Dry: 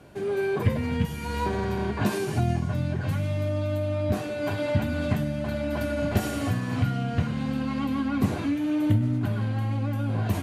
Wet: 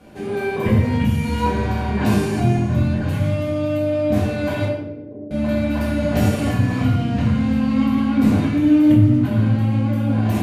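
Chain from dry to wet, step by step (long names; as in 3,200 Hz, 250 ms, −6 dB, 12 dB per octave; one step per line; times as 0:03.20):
0:04.65–0:05.31: flat-topped band-pass 410 Hz, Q 2.8
rectangular room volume 310 cubic metres, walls mixed, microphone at 2 metres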